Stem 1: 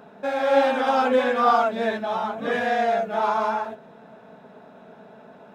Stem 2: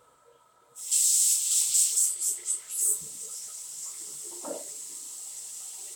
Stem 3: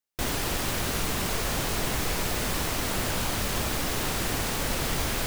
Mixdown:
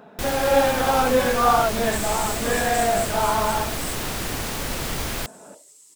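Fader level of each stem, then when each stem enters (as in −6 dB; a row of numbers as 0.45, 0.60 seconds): +0.5, −11.0, +0.5 decibels; 0.00, 1.00, 0.00 seconds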